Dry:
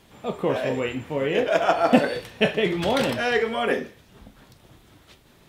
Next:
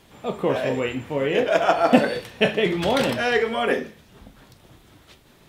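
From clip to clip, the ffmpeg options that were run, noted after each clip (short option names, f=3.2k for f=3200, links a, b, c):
-af "bandreject=f=53.65:t=h:w=4,bandreject=f=107.3:t=h:w=4,bandreject=f=160.95:t=h:w=4,bandreject=f=214.6:t=h:w=4,volume=1.5dB"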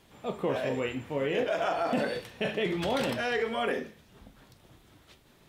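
-af "alimiter=limit=-13dB:level=0:latency=1:release=35,volume=-6.5dB"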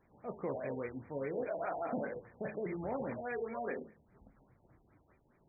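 -af "afftfilt=real='re*lt(b*sr/1024,930*pow(2500/930,0.5+0.5*sin(2*PI*4.9*pts/sr)))':imag='im*lt(b*sr/1024,930*pow(2500/930,0.5+0.5*sin(2*PI*4.9*pts/sr)))':win_size=1024:overlap=0.75,volume=-8.5dB"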